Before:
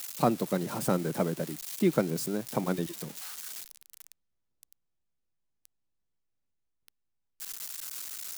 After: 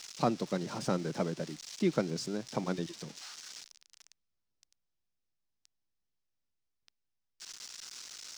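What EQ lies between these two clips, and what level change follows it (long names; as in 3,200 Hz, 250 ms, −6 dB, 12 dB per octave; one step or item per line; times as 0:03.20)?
high-frequency loss of the air 130 metres
high-shelf EQ 3,200 Hz +8 dB
parametric band 5,500 Hz +7 dB 0.63 octaves
−4.0 dB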